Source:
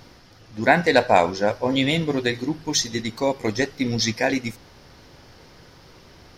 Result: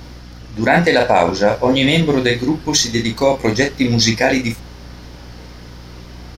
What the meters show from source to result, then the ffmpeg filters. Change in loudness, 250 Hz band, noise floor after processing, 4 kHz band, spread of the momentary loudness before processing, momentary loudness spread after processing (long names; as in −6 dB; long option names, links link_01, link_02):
+6.5 dB, +7.5 dB, −36 dBFS, +7.5 dB, 10 LU, 6 LU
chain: -filter_complex "[0:a]asplit=2[link_01][link_02];[link_02]adelay=35,volume=-6dB[link_03];[link_01][link_03]amix=inputs=2:normalize=0,aeval=exprs='val(0)+0.00708*(sin(2*PI*60*n/s)+sin(2*PI*2*60*n/s)/2+sin(2*PI*3*60*n/s)/3+sin(2*PI*4*60*n/s)/4+sin(2*PI*5*60*n/s)/5)':channel_layout=same,alimiter=level_in=8.5dB:limit=-1dB:release=50:level=0:latency=1,volume=-1dB"